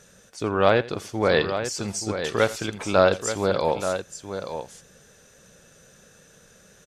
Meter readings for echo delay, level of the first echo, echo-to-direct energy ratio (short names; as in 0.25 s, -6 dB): 84 ms, -18.0 dB, -8.5 dB